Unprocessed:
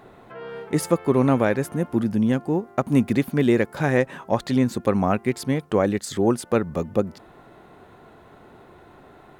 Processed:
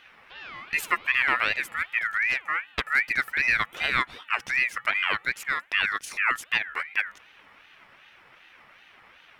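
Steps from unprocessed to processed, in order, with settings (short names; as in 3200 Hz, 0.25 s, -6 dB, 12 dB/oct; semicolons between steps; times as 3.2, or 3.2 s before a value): 2.17–2.83 self-modulated delay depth 0.42 ms; ring modulator with a swept carrier 1900 Hz, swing 20%, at 2.6 Hz; gain -2.5 dB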